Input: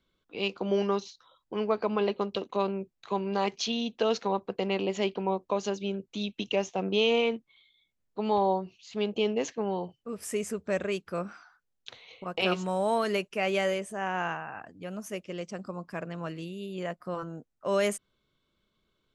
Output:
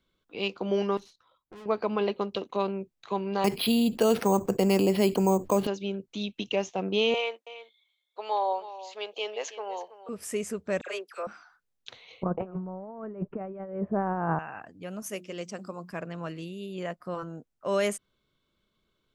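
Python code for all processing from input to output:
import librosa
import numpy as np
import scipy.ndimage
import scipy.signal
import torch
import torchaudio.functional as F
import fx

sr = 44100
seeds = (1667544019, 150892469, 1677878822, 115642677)

y = fx.chain(x, sr, fx.peak_eq(hz=5000.0, db=-7.5, octaves=1.4),
    fx.tube_stage(drive_db=44.0, bias=0.7), at=(0.97, 1.66))
y = fx.chain(y, sr, fx.resample_bad(factor=6, down='filtered', up='hold'),
    fx.low_shelf(hz=310.0, db=10.0),
    fx.env_flatten(amount_pct=50), at=(3.44, 5.67))
y = fx.chain(y, sr, fx.highpass(hz=520.0, slope=24),
    fx.echo_single(ms=325, db=-14.5), at=(7.14, 10.09))
y = fx.chain(y, sr, fx.highpass(hz=450.0, slope=24),
    fx.dispersion(late='lows', ms=60.0, hz=1700.0), at=(10.81, 11.27))
y = fx.chain(y, sr, fx.lowpass(hz=1300.0, slope=24),
    fx.low_shelf(hz=310.0, db=11.5),
    fx.over_compress(threshold_db=-31.0, ratio=-0.5), at=(12.23, 14.39))
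y = fx.chain(y, sr, fx.highpass(hz=100.0, slope=12),
    fx.high_shelf(hz=5900.0, db=8.5),
    fx.hum_notches(base_hz=60, count=6), at=(15.02, 15.91))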